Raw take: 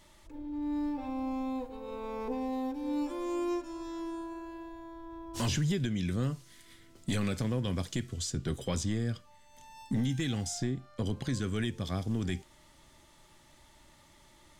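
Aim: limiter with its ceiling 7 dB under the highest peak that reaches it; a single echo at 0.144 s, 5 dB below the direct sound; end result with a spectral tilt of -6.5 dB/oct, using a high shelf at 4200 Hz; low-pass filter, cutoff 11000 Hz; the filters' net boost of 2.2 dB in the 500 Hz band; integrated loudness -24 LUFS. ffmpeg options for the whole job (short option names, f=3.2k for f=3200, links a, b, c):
-af "lowpass=11k,equalizer=f=500:t=o:g=3,highshelf=f=4.2k:g=-5,alimiter=level_in=4dB:limit=-24dB:level=0:latency=1,volume=-4dB,aecho=1:1:144:0.562,volume=12.5dB"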